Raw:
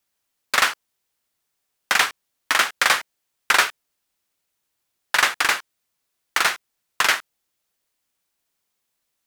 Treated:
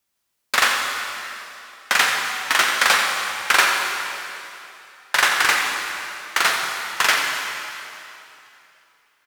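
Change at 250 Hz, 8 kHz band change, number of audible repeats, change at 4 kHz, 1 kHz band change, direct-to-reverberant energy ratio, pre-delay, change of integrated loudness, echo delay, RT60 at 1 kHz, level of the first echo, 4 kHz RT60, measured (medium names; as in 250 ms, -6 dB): +3.0 dB, +3.0 dB, 1, +3.0 dB, +3.0 dB, 0.0 dB, 4 ms, +1.0 dB, 88 ms, 2.8 s, -10.5 dB, 2.7 s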